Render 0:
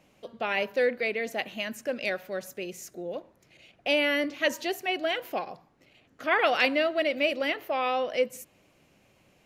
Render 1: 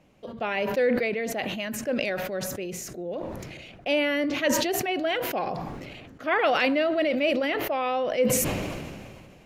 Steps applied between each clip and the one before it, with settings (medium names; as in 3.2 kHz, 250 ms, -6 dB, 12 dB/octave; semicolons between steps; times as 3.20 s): tilt EQ -1.5 dB/octave; decay stretcher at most 28 dB/s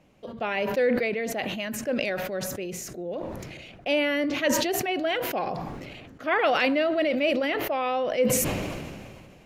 no audible change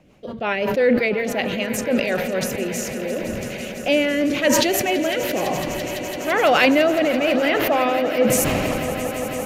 rotary cabinet horn 5.5 Hz, later 1 Hz, at 1.96 s; echo with a slow build-up 168 ms, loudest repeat 5, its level -16 dB; trim +8 dB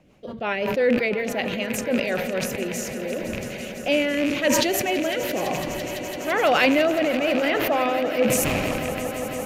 rattle on loud lows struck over -26 dBFS, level -15 dBFS; trim -3 dB